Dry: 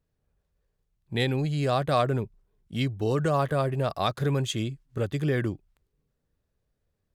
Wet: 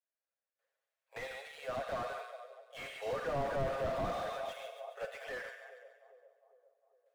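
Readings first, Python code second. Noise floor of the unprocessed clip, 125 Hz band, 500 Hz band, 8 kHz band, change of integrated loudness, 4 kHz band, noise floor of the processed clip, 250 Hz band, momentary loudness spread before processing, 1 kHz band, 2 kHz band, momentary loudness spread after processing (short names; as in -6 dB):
-79 dBFS, -22.0 dB, -9.5 dB, -13.0 dB, -12.0 dB, -14.5 dB, under -85 dBFS, -19.5 dB, 9 LU, -9.5 dB, -7.0 dB, 16 LU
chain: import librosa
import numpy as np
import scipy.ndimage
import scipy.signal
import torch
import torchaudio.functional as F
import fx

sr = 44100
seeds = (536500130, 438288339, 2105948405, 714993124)

p1 = scipy.ndimage.median_filter(x, 9, mode='constant')
p2 = fx.high_shelf(p1, sr, hz=2200.0, db=5.0)
p3 = p2 + 0.96 * np.pad(p2, (int(7.4 * sr / 1000.0), 0))[:len(p2)]
p4 = fx.rider(p3, sr, range_db=10, speed_s=2.0)
p5 = fx.tremolo_random(p4, sr, seeds[0], hz=1.7, depth_pct=80)
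p6 = scipy.signal.sosfilt(scipy.signal.cheby1(6, 6, 460.0, 'highpass', fs=sr, output='sos'), p5)
p7 = p6 + fx.echo_split(p6, sr, split_hz=780.0, low_ms=405, high_ms=140, feedback_pct=52, wet_db=-13.0, dry=0)
p8 = fx.rev_schroeder(p7, sr, rt60_s=0.96, comb_ms=32, drr_db=9.0)
p9 = fx.slew_limit(p8, sr, full_power_hz=13.0)
y = p9 * librosa.db_to_amplitude(1.0)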